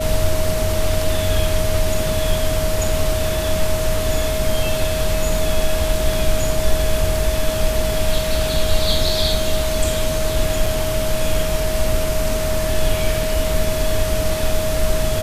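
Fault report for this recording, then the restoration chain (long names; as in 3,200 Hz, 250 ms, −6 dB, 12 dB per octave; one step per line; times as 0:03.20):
whistle 630 Hz −22 dBFS
0:10.66: drop-out 4 ms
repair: notch filter 630 Hz, Q 30
repair the gap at 0:10.66, 4 ms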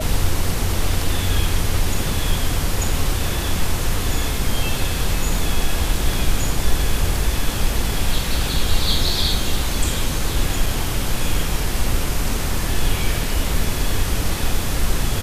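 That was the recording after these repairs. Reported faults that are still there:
none of them is left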